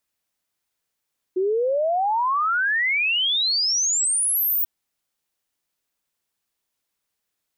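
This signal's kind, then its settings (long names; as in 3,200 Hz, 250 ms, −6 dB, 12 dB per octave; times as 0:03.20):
exponential sine sweep 360 Hz → 16,000 Hz 3.29 s −18.5 dBFS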